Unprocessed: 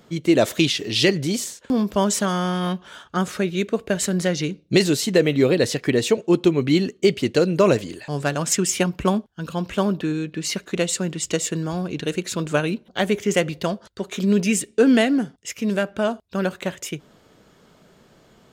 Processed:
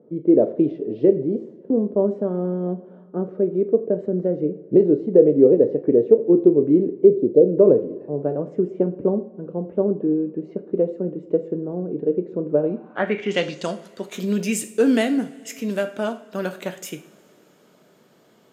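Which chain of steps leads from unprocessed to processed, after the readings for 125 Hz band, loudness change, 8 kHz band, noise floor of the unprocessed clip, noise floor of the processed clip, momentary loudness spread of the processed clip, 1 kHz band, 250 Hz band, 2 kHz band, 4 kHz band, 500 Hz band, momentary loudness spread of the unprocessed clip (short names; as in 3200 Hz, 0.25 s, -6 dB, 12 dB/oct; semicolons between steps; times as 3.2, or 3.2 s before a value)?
-4.5 dB, +1.5 dB, under -10 dB, -56 dBFS, -55 dBFS, 14 LU, -7.5 dB, +0.5 dB, -8.0 dB, under -10 dB, +4.0 dB, 9 LU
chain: spectral gain 7.08–7.46, 790–3300 Hz -29 dB; HPF 250 Hz 12 dB/oct; low shelf 450 Hz +7 dB; two-slope reverb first 0.43 s, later 3.6 s, from -22 dB, DRR 7.5 dB; low-pass sweep 460 Hz -> 14000 Hz, 12.58–13.87; gain -5 dB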